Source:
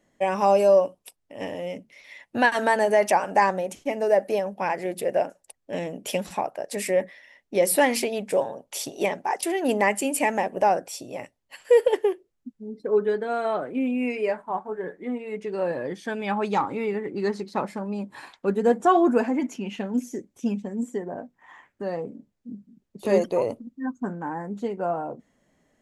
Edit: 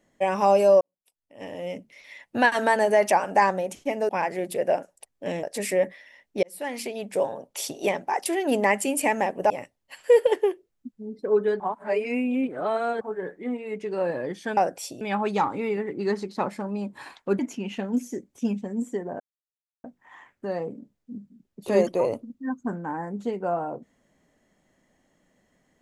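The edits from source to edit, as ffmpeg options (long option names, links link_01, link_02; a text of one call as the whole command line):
ffmpeg -i in.wav -filter_complex "[0:a]asplit=12[link_01][link_02][link_03][link_04][link_05][link_06][link_07][link_08][link_09][link_10][link_11][link_12];[link_01]atrim=end=0.81,asetpts=PTS-STARTPTS,afade=type=out:start_time=0.806:duration=0.004:curve=hsin[link_13];[link_02]atrim=start=0.81:end=4.092,asetpts=PTS-STARTPTS,afade=type=in:duration=0.89:curve=qua[link_14];[link_03]atrim=start=4.558:end=5.902[link_15];[link_04]atrim=start=6.598:end=7.6,asetpts=PTS-STARTPTS,afade=type=out:start_time=0.998:duration=0.004:curve=hsin[link_16];[link_05]atrim=start=7.6:end=10.672,asetpts=PTS-STARTPTS,afade=type=in:duration=0.94[link_17];[link_06]atrim=start=11.108:end=13.212[link_18];[link_07]atrim=start=13.208:end=14.622,asetpts=PTS-STARTPTS,areverse[link_19];[link_08]atrim=start=14.618:end=16.182[link_20];[link_09]atrim=start=10.668:end=11.112[link_21];[link_10]atrim=start=16.178:end=18.562[link_22];[link_11]atrim=start=19.398:end=21.21,asetpts=PTS-STARTPTS,afade=type=out:start_time=1.808:duration=0.004:curve=hsin,apad=pad_dur=0.64[link_23];[link_12]atrim=start=21.21,asetpts=PTS-STARTPTS,afade=type=in:duration=0.004:curve=hsin[link_24];[link_13][link_14]concat=n=2:v=0:a=1[link_25];[link_25][link_15]acrossfade=duration=0.004:curve1=hsin:curve2=hsin[link_26];[link_16][link_17]concat=n=2:v=0:a=1[link_27];[link_26][link_27]acrossfade=duration=0.004:curve1=hsin:curve2=hsin[link_28];[link_28][link_18]acrossfade=duration=0.004:curve1=hsin:curve2=hsin[link_29];[link_29][link_19]acrossfade=duration=0.004:curve1=hsin:curve2=hsin[link_30];[link_30][link_20]acrossfade=duration=0.004:curve1=hsin:curve2=hsin[link_31];[link_31][link_21]acrossfade=duration=0.004:curve1=hsin:curve2=hsin[link_32];[link_32][link_22]acrossfade=duration=0.004:curve1=hsin:curve2=hsin[link_33];[link_23][link_24]concat=n=2:v=0:a=1[link_34];[link_33][link_34]acrossfade=duration=0.004:curve1=hsin:curve2=hsin" out.wav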